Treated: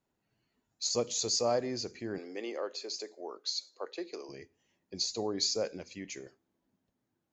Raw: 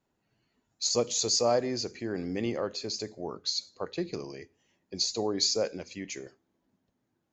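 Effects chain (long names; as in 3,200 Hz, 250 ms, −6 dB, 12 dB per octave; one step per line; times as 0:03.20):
0:02.18–0:04.29: high-pass filter 340 Hz 24 dB per octave
level −4 dB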